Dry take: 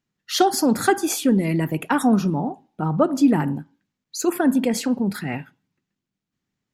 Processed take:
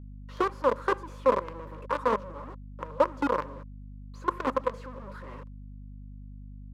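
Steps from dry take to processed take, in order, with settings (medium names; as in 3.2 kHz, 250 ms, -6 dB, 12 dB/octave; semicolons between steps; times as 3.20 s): companded quantiser 2-bit; two resonant band-passes 740 Hz, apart 0.95 oct; hum 50 Hz, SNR 12 dB; trim -4 dB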